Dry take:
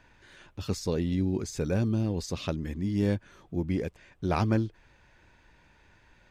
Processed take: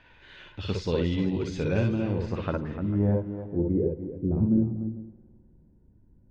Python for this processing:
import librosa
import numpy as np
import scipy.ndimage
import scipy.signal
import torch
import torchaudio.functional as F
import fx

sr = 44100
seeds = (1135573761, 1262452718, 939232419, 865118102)

y = fx.filter_sweep_lowpass(x, sr, from_hz=3200.0, to_hz=240.0, start_s=1.72, end_s=4.36, q=2.0)
y = fx.echo_multitap(y, sr, ms=(58, 60, 299, 445), db=(-4.5, -5.5, -10.5, -17.5))
y = fx.rev_spring(y, sr, rt60_s=2.2, pass_ms=(52,), chirp_ms=50, drr_db=16.0)